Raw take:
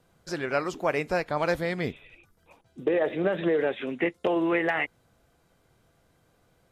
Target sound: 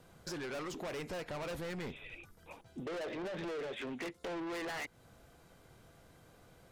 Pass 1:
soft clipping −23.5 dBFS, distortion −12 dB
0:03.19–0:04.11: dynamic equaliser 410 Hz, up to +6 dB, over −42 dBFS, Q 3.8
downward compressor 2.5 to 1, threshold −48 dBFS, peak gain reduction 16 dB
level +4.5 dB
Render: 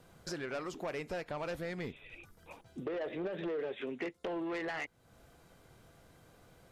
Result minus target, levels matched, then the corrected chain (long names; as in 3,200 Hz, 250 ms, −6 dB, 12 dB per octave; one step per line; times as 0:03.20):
soft clipping: distortion −8 dB
soft clipping −35.5 dBFS, distortion −4 dB
0:03.19–0:04.11: dynamic equaliser 410 Hz, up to +6 dB, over −42 dBFS, Q 3.8
downward compressor 2.5 to 1, threshold −48 dBFS, peak gain reduction 9.5 dB
level +4.5 dB